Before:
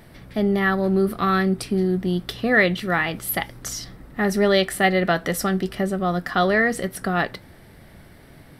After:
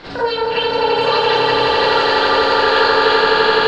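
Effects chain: compressor 10:1, threshold -29 dBFS, peak gain reduction 17 dB; speed mistake 33 rpm record played at 78 rpm; LPF 4100 Hz 24 dB/oct; swelling echo 85 ms, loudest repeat 8, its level -4.5 dB; Schroeder reverb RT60 0.44 s, combs from 32 ms, DRR -9 dB; mismatched tape noise reduction encoder only; gain +4 dB

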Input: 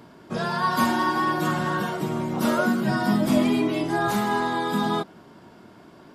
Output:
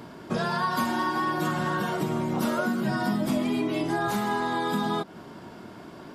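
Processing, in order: compressor 4:1, threshold -30 dBFS, peak gain reduction 12.5 dB; gain +5 dB

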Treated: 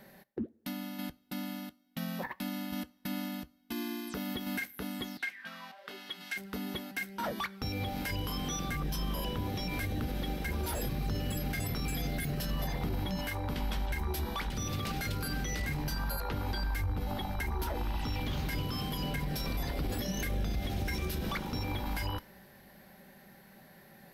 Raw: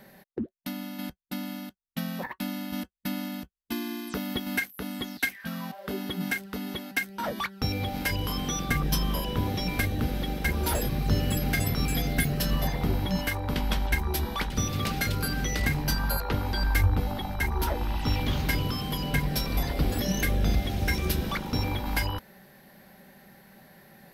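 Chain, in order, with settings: 5.17–6.36 band-pass 1600 Hz -> 3800 Hz, Q 0.62; two-slope reverb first 0.43 s, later 2.9 s, from -18 dB, DRR 19.5 dB; limiter -22.5 dBFS, peak gain reduction 11 dB; gain -3 dB

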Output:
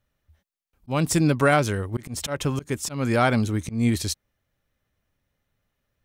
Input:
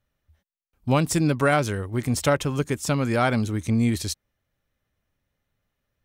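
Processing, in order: auto swell 0.177 s; gain +1.5 dB

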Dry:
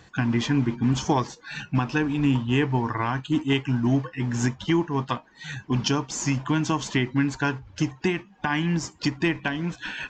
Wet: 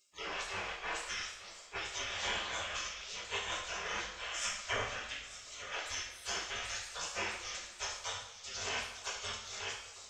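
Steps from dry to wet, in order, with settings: 4.26–5.72 graphic EQ 500/1000/2000/4000 Hz +10/+7/-7/-7 dB; thinning echo 0.893 s, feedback 72%, high-pass 280 Hz, level -11 dB; spectral gate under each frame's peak -30 dB weak; two-slope reverb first 0.67 s, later 2.8 s, from -17 dB, DRR -4.5 dB

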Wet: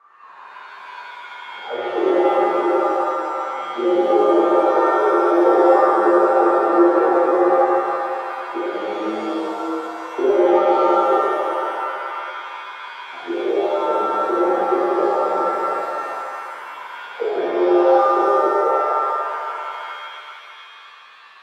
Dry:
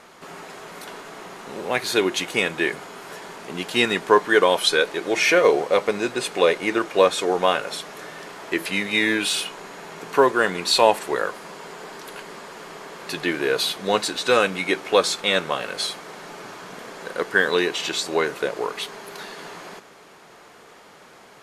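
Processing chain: auto-wah 350–1200 Hz, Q 13, down, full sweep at -18.5 dBFS; shimmer reverb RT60 2.4 s, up +7 st, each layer -2 dB, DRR -9 dB; gain +3.5 dB

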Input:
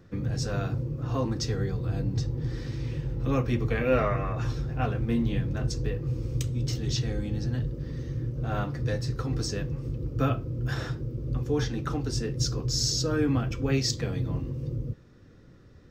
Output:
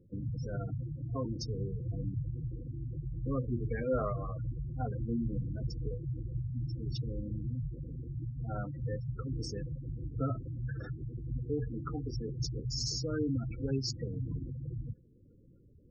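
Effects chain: spectral gate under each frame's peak -15 dB strong; gain -7 dB

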